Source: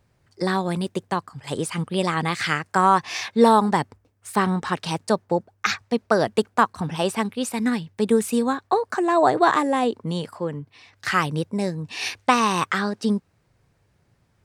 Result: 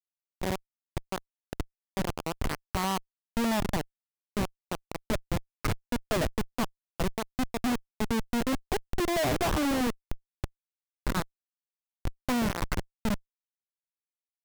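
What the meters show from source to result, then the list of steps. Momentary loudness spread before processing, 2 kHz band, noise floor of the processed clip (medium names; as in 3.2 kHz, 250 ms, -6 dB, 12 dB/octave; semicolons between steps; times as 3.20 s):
10 LU, -10.5 dB, under -85 dBFS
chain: small resonant body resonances 270/620/2200 Hz, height 8 dB, ringing for 35 ms; Schmitt trigger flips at -16.5 dBFS; trim -5.5 dB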